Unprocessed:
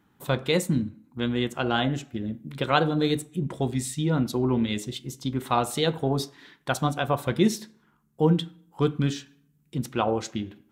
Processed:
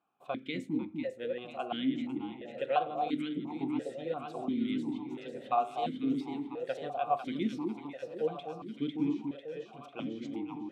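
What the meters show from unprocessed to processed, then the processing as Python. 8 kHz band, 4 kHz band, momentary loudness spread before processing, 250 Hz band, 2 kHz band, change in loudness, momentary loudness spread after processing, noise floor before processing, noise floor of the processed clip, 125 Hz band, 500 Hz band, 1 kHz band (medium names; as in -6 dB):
under -25 dB, -14.0 dB, 11 LU, -7.0 dB, -13.0 dB, -8.5 dB, 10 LU, -66 dBFS, -54 dBFS, -20.0 dB, -8.5 dB, -5.0 dB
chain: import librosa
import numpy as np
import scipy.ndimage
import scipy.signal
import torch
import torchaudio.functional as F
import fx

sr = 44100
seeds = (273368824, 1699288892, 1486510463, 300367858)

y = fx.echo_alternate(x, sr, ms=249, hz=830.0, feedback_pct=82, wet_db=-4)
y = fx.vowel_held(y, sr, hz=2.9)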